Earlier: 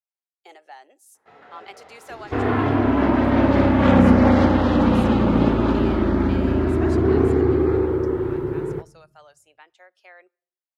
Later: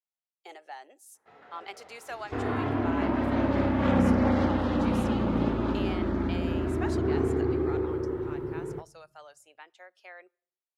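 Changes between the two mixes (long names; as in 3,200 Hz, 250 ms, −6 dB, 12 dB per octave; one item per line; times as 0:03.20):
first sound −5.5 dB
second sound −9.0 dB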